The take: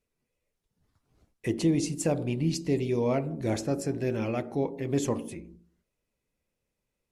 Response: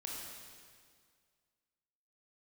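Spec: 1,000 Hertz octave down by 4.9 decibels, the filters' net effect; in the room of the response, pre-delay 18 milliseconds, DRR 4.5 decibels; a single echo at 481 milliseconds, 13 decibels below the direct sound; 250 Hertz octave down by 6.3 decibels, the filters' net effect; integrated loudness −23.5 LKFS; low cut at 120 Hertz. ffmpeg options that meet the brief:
-filter_complex "[0:a]highpass=120,equalizer=frequency=250:width_type=o:gain=-8,equalizer=frequency=1000:width_type=o:gain=-6.5,aecho=1:1:481:0.224,asplit=2[link_01][link_02];[1:a]atrim=start_sample=2205,adelay=18[link_03];[link_02][link_03]afir=irnorm=-1:irlink=0,volume=-4dB[link_04];[link_01][link_04]amix=inputs=2:normalize=0,volume=9dB"

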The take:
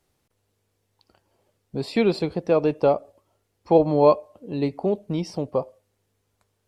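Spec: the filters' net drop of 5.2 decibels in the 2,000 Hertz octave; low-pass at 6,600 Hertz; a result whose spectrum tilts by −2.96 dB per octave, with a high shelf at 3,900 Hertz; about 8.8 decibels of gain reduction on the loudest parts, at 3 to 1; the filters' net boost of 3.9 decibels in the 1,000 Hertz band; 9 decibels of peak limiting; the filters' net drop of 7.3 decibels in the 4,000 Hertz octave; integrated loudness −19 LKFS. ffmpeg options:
ffmpeg -i in.wav -af "lowpass=6600,equalizer=frequency=1000:width_type=o:gain=6.5,equalizer=frequency=2000:width_type=o:gain=-5.5,highshelf=frequency=3900:gain=-6.5,equalizer=frequency=4000:width_type=o:gain=-3,acompressor=threshold=-21dB:ratio=3,volume=11.5dB,alimiter=limit=-7dB:level=0:latency=1" out.wav

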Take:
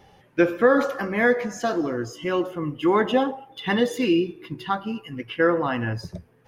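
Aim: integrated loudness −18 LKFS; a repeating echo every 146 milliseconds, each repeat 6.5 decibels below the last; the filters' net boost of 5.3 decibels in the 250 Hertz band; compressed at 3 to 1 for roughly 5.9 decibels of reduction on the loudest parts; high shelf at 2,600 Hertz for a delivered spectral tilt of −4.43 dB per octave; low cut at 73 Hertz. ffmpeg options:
ffmpeg -i in.wav -af "highpass=73,equalizer=frequency=250:width_type=o:gain=7,highshelf=frequency=2600:gain=6,acompressor=threshold=-18dB:ratio=3,aecho=1:1:146|292|438|584|730|876:0.473|0.222|0.105|0.0491|0.0231|0.0109,volume=4.5dB" out.wav

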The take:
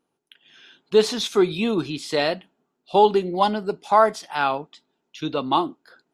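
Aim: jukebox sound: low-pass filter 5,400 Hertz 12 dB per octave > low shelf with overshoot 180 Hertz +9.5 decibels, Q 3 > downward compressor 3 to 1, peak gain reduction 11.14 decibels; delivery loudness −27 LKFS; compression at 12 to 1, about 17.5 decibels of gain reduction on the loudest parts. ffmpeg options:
ffmpeg -i in.wav -af "acompressor=threshold=-28dB:ratio=12,lowpass=5400,lowshelf=frequency=180:width_type=q:width=3:gain=9.5,acompressor=threshold=-38dB:ratio=3,volume=14dB" out.wav

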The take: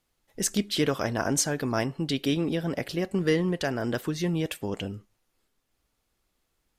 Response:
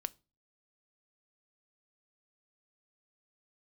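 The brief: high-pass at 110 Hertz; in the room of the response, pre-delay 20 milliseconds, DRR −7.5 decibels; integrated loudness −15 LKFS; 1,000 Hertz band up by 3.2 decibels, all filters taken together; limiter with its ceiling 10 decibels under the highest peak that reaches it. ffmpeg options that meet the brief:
-filter_complex "[0:a]highpass=110,equalizer=frequency=1000:width_type=o:gain=4.5,alimiter=limit=-19.5dB:level=0:latency=1,asplit=2[link_01][link_02];[1:a]atrim=start_sample=2205,adelay=20[link_03];[link_02][link_03]afir=irnorm=-1:irlink=0,volume=8.5dB[link_04];[link_01][link_04]amix=inputs=2:normalize=0,volume=8dB"

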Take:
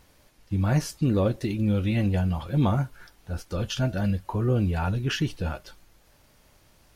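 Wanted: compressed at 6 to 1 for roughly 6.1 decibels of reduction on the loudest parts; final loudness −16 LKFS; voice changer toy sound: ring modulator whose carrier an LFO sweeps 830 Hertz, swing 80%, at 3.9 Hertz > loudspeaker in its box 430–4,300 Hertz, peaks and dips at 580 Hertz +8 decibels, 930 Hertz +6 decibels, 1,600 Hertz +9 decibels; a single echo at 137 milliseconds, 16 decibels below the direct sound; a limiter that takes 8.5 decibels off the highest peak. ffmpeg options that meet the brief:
ffmpeg -i in.wav -af "acompressor=threshold=-25dB:ratio=6,alimiter=level_in=2.5dB:limit=-24dB:level=0:latency=1,volume=-2.5dB,aecho=1:1:137:0.158,aeval=exprs='val(0)*sin(2*PI*830*n/s+830*0.8/3.9*sin(2*PI*3.9*n/s))':channel_layout=same,highpass=430,equalizer=frequency=580:width_type=q:width=4:gain=8,equalizer=frequency=930:width_type=q:width=4:gain=6,equalizer=frequency=1600:width_type=q:width=4:gain=9,lowpass=frequency=4300:width=0.5412,lowpass=frequency=4300:width=1.3066,volume=16dB" out.wav

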